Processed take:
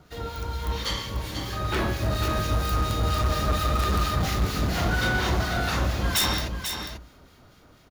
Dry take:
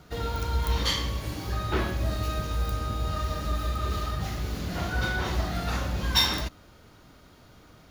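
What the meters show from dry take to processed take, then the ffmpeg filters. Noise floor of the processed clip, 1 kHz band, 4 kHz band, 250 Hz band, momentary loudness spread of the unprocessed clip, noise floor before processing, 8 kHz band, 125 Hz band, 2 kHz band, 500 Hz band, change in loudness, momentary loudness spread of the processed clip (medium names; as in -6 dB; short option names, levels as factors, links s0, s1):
-54 dBFS, +4.5 dB, +0.5 dB, +4.0 dB, 7 LU, -54 dBFS, +5.5 dB, +3.0 dB, +4.5 dB, +4.0 dB, +3.0 dB, 8 LU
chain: -filter_complex "[0:a]dynaudnorm=f=500:g=7:m=3.76,bandreject=f=58.6:t=h:w=4,bandreject=f=117.2:t=h:w=4,bandreject=f=175.8:t=h:w=4,bandreject=f=234.4:t=h:w=4,bandreject=f=293:t=h:w=4,aeval=exprs='(mod(2.82*val(0)+1,2)-1)/2.82':c=same,acrossover=split=1500[s0][s1];[s0]aeval=exprs='val(0)*(1-0.5/2+0.5/2*cos(2*PI*4.3*n/s))':c=same[s2];[s1]aeval=exprs='val(0)*(1-0.5/2-0.5/2*cos(2*PI*4.3*n/s))':c=same[s3];[s2][s3]amix=inputs=2:normalize=0,asoftclip=type=hard:threshold=0.1,aecho=1:1:491:0.422"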